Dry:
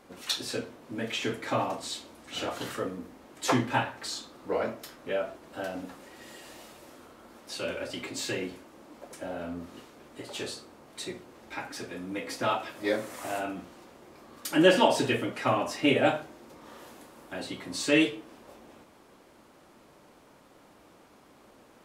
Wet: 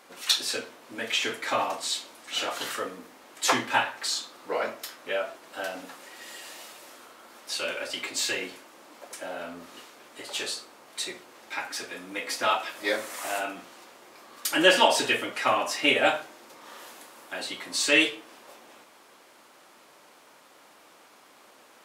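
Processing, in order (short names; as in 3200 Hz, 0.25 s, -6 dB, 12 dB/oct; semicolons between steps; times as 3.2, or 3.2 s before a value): HPF 1200 Hz 6 dB/oct; gain +7.5 dB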